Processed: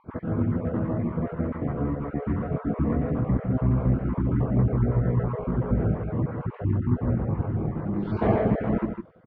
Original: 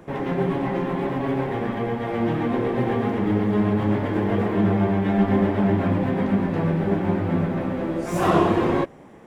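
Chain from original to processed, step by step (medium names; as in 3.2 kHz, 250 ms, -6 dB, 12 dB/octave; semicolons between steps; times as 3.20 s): random holes in the spectrogram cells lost 37%; low-pass 4.7 kHz 24 dB/octave; pitch shift -8.5 st; on a send: delay 155 ms -7.5 dB; on the sum: trim -1.5 dB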